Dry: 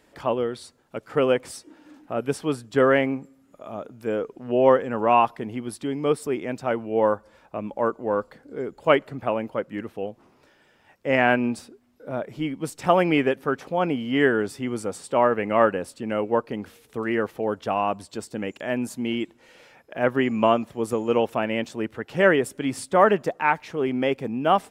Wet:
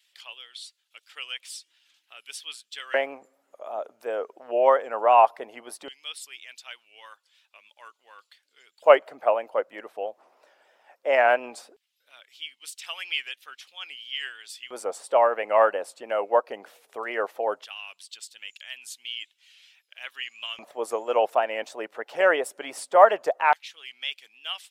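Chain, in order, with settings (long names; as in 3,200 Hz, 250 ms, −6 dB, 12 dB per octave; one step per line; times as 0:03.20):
pitch vibrato 3 Hz 62 cents
harmonic and percussive parts rebalanced percussive +6 dB
auto-filter high-pass square 0.17 Hz 630–3,200 Hz
level −7 dB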